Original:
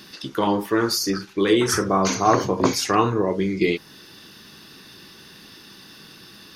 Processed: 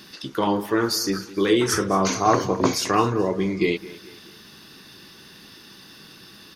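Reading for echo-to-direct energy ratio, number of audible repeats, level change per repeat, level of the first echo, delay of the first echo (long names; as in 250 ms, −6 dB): −17.0 dB, 3, −7.5 dB, −18.0 dB, 215 ms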